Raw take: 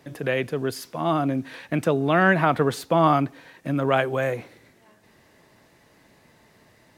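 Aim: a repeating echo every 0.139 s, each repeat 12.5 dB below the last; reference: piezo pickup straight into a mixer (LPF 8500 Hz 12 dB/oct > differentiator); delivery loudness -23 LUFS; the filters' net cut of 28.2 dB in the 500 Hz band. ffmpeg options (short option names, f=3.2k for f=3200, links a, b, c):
-af "lowpass=8.5k,aderivative,equalizer=f=500:t=o:g=-8.5,aecho=1:1:139|278|417:0.237|0.0569|0.0137,volume=18dB"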